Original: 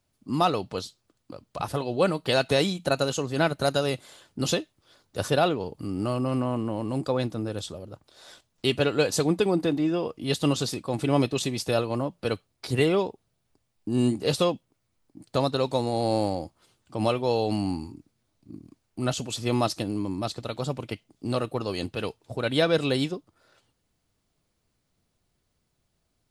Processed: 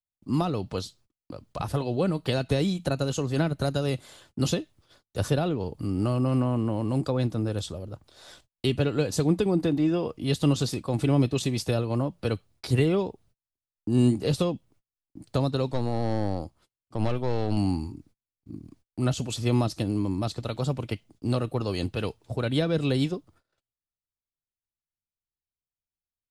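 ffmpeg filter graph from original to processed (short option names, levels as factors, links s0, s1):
-filter_complex "[0:a]asettb=1/sr,asplit=3[s0][s1][s2];[s0]atrim=end=15.714[s3];[s1]atrim=start=15.71:end=17.57,asetpts=PTS-STARTPTS,afade=t=in:d=0.004:c=qsin,afade=t=out:st=1.856:d=0.004:c=qsin,acrossover=split=4600[s4][s5];[s5]acompressor=threshold=0.00251:ratio=4:attack=1:release=60[s6];[s4][s6]amix=inputs=2:normalize=0,aeval=exprs='(tanh(11.2*val(0)+0.7)-tanh(0.7))/11.2':c=same[s7];[s2]atrim=start=17.566[s8];[s3][s7]acrossfade=d=0.004:c1=hsin:c2=qsin[s9];[s9][s8]acrossfade=d=0.004:c1=qsin:c2=hsin,agate=range=0.02:threshold=0.00126:ratio=16:detection=peak,acrossover=split=370[s10][s11];[s11]acompressor=threshold=0.0355:ratio=6[s12];[s10][s12]amix=inputs=2:normalize=0,lowshelf=f=110:g=11.5"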